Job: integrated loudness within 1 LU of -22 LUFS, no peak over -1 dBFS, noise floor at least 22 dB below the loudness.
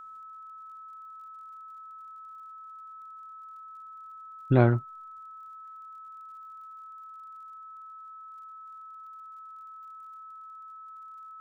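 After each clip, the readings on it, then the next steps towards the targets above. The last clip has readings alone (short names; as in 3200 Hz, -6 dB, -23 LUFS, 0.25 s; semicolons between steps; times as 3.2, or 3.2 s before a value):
ticks 35/s; steady tone 1300 Hz; tone level -43 dBFS; loudness -36.5 LUFS; peak -6.0 dBFS; loudness target -22.0 LUFS
-> de-click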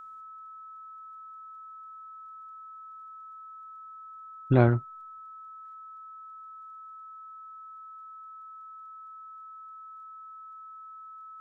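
ticks 0/s; steady tone 1300 Hz; tone level -43 dBFS
-> notch 1300 Hz, Q 30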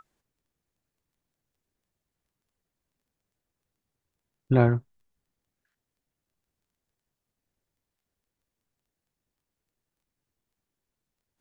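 steady tone none; loudness -24.0 LUFS; peak -6.0 dBFS; loudness target -22.0 LUFS
-> gain +2 dB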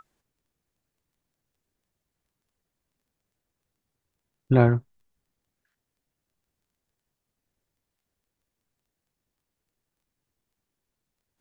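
loudness -22.0 LUFS; peak -4.0 dBFS; noise floor -84 dBFS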